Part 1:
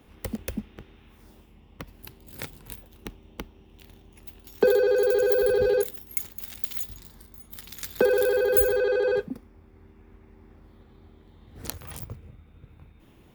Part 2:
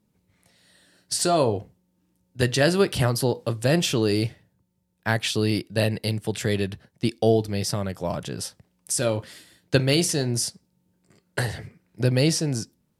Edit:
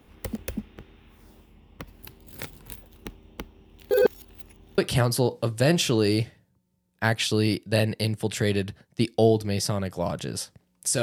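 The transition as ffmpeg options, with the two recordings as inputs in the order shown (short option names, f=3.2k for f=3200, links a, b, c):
-filter_complex "[0:a]apad=whole_dur=11.02,atrim=end=11.02,asplit=2[a][b];[a]atrim=end=3.912[c];[b]atrim=start=3.908:end=4.782,asetpts=PTS-STARTPTS,areverse[d];[1:a]atrim=start=2.818:end=9.06[e];[c][d]acrossfade=d=0.004:c1=hsin:c2=hsin[f];[f][e]acrossfade=d=0.004:c1=hsin:c2=hsin"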